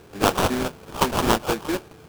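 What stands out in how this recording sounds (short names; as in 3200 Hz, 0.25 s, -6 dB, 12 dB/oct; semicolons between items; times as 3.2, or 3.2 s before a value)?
aliases and images of a low sample rate 2000 Hz, jitter 20%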